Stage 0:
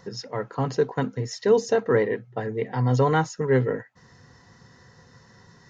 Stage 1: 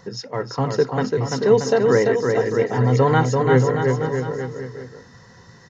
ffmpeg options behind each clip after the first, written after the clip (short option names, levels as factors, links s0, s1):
-af "aecho=1:1:340|629|874.6|1083|1261:0.631|0.398|0.251|0.158|0.1,volume=1.5"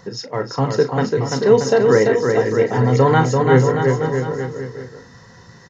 -filter_complex "[0:a]asplit=2[s0][s1];[s1]adelay=37,volume=0.282[s2];[s0][s2]amix=inputs=2:normalize=0,volume=1.33"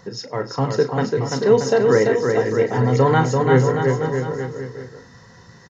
-af "aecho=1:1:101:0.0708,volume=0.794"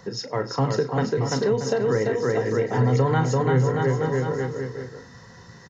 -filter_complex "[0:a]acrossover=split=140[s0][s1];[s1]acompressor=threshold=0.1:ratio=6[s2];[s0][s2]amix=inputs=2:normalize=0"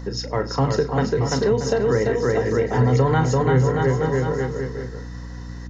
-af "aeval=exprs='val(0)+0.0178*(sin(2*PI*60*n/s)+sin(2*PI*2*60*n/s)/2+sin(2*PI*3*60*n/s)/3+sin(2*PI*4*60*n/s)/4+sin(2*PI*5*60*n/s)/5)':c=same,volume=1.33"